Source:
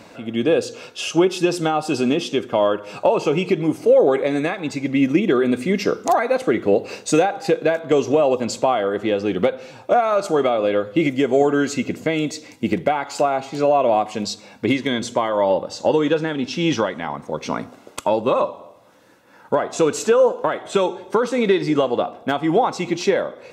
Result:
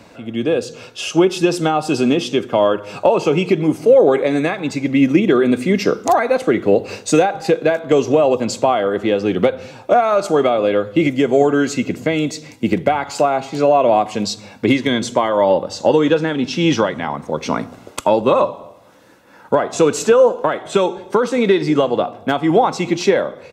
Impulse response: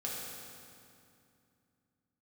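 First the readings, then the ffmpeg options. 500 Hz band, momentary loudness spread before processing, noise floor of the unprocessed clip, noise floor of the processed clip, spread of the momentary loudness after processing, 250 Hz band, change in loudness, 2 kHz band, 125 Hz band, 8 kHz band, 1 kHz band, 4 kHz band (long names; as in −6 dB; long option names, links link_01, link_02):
+3.5 dB, 7 LU, −47 dBFS, −43 dBFS, 8 LU, +4.0 dB, +3.5 dB, +3.0 dB, +4.5 dB, +3.0 dB, +3.5 dB, +3.0 dB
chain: -filter_complex "[0:a]lowshelf=frequency=100:gain=8.5,acrossover=split=130[link_01][link_02];[link_01]aecho=1:1:214:0.596[link_03];[link_02]dynaudnorm=framelen=650:gausssize=3:maxgain=11.5dB[link_04];[link_03][link_04]amix=inputs=2:normalize=0,volume=-1dB"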